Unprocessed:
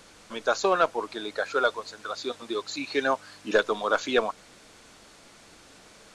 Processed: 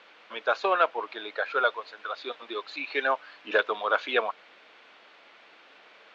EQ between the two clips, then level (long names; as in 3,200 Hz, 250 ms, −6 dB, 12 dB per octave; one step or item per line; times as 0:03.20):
high-pass filter 490 Hz 12 dB per octave
low-pass with resonance 2,900 Hz, resonance Q 1.6
high-frequency loss of the air 98 metres
0.0 dB